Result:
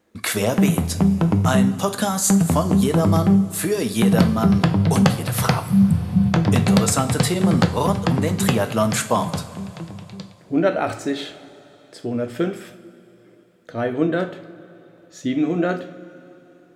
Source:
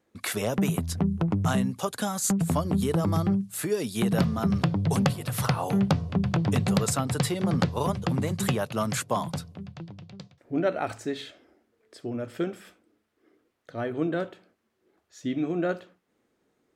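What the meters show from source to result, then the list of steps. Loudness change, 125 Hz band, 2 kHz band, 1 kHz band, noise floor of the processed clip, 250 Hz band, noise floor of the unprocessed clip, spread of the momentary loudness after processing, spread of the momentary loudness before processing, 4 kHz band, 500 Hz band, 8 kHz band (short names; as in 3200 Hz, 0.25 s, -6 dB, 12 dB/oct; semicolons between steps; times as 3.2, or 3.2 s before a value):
+8.0 dB, +7.5 dB, +7.5 dB, +7.5 dB, -51 dBFS, +8.5 dB, -74 dBFS, 13 LU, 12 LU, +7.5 dB, +7.5 dB, +8.0 dB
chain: spectral repair 5.63–6.24, 250–7500 Hz after; two-slope reverb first 0.41 s, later 3.4 s, from -16 dB, DRR 7 dB; gain +7 dB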